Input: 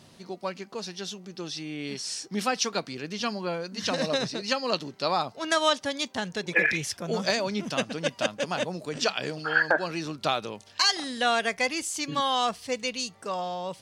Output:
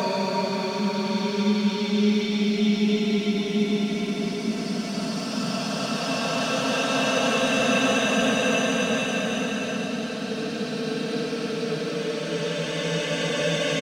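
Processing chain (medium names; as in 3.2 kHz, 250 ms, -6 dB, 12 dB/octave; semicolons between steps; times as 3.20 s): comb 4.5 ms, depth 58%; waveshaping leveller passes 1; Paulstretch 23×, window 0.25 s, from 7.45 s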